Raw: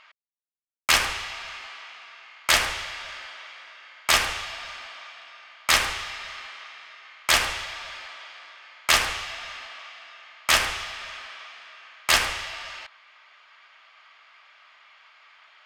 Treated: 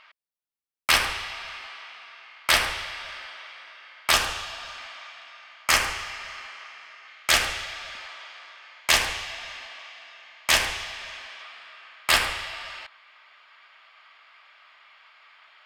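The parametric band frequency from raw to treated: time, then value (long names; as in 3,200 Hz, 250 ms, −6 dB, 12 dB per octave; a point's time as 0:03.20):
parametric band −8 dB 0.24 octaves
6,800 Hz
from 0:04.13 2,100 Hz
from 0:04.77 430 Hz
from 0:05.64 3,700 Hz
from 0:07.08 1,000 Hz
from 0:07.95 240 Hz
from 0:08.80 1,300 Hz
from 0:11.42 6,200 Hz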